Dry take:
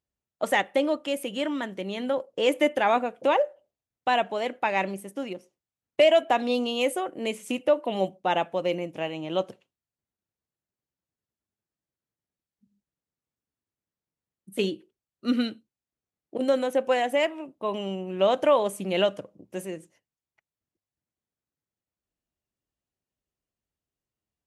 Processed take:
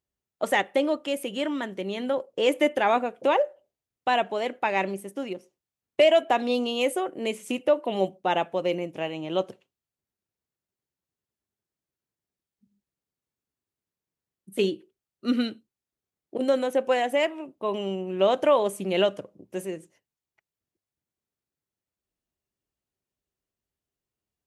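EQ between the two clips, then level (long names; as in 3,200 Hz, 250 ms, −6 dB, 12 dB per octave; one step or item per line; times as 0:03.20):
parametric band 390 Hz +4.5 dB 0.23 octaves
0.0 dB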